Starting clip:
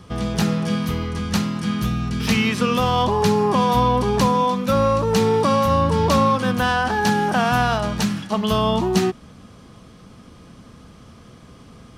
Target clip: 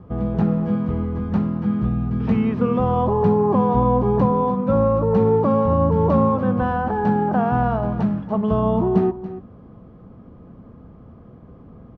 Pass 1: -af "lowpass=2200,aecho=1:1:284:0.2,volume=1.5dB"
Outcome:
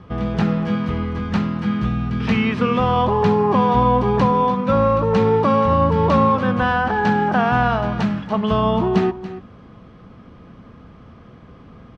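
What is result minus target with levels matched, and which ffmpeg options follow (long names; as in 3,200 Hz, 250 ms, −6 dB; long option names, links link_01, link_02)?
2,000 Hz band +10.0 dB
-af "lowpass=810,aecho=1:1:284:0.2,volume=1.5dB"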